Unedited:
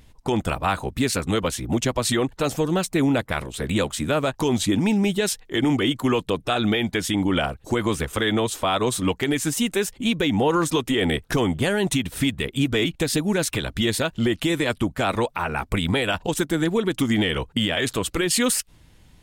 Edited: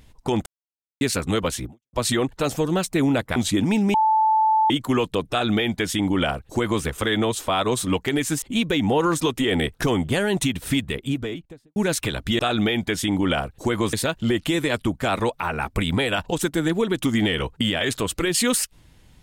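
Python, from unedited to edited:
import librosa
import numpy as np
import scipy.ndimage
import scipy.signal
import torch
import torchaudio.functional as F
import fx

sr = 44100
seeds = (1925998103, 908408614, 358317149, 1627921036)

y = fx.studio_fade_out(x, sr, start_s=12.26, length_s=1.0)
y = fx.edit(y, sr, fx.silence(start_s=0.46, length_s=0.55),
    fx.fade_out_span(start_s=1.66, length_s=0.27, curve='exp'),
    fx.cut(start_s=3.36, length_s=1.15),
    fx.bleep(start_s=5.09, length_s=0.76, hz=875.0, db=-15.0),
    fx.duplicate(start_s=6.45, length_s=1.54, to_s=13.89),
    fx.cut(start_s=9.57, length_s=0.35), tone=tone)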